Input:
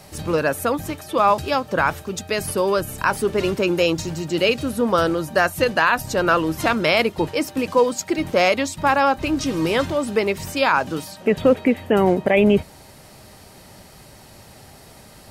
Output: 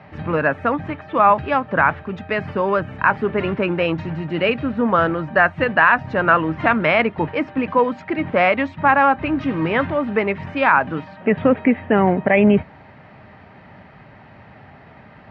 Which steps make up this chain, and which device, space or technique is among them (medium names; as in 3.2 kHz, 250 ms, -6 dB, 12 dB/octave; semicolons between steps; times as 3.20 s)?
bass cabinet (cabinet simulation 88–2400 Hz, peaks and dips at 360 Hz -6 dB, 510 Hz -5 dB, 1.8 kHz +3 dB); trim +3.5 dB